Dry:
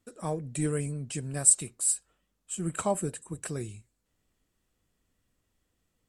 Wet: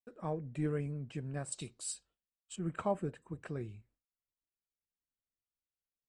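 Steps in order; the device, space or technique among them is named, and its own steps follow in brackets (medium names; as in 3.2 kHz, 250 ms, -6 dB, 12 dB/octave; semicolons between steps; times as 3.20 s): hearing-loss simulation (low-pass 2.3 kHz 12 dB/octave; expander -60 dBFS); 1.52–2.56 s: resonant high shelf 2.8 kHz +13.5 dB, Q 1.5; trim -5 dB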